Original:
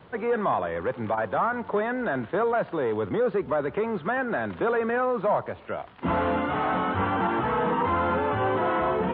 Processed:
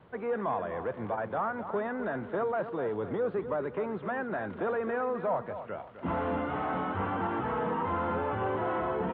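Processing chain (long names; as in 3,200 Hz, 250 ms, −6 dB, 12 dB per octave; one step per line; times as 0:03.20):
high-shelf EQ 3,000 Hz −9 dB
on a send: repeating echo 257 ms, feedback 36%, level −11 dB
on the sum: level −6 dB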